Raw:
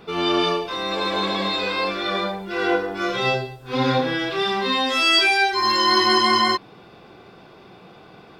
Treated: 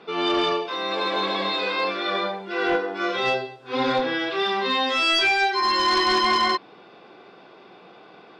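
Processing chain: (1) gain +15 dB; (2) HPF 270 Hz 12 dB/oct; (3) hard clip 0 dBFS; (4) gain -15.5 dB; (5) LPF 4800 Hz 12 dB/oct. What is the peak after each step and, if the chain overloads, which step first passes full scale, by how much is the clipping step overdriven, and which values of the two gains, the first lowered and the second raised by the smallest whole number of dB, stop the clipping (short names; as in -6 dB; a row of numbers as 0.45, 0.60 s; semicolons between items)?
+8.5, +9.5, 0.0, -15.5, -14.5 dBFS; step 1, 9.5 dB; step 1 +5 dB, step 4 -5.5 dB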